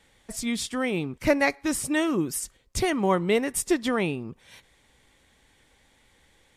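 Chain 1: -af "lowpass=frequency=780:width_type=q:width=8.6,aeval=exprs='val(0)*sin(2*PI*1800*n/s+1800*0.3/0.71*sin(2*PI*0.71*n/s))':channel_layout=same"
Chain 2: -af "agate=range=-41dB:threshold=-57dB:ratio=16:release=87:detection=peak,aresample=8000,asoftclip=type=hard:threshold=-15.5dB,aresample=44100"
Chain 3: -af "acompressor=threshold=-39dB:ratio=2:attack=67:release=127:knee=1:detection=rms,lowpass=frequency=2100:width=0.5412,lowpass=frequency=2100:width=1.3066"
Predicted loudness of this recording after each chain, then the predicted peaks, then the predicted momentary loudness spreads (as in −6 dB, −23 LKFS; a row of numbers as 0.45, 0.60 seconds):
−21.5, −27.0, −35.5 LKFS; −4.0, −13.5, −18.5 dBFS; 16, 9, 9 LU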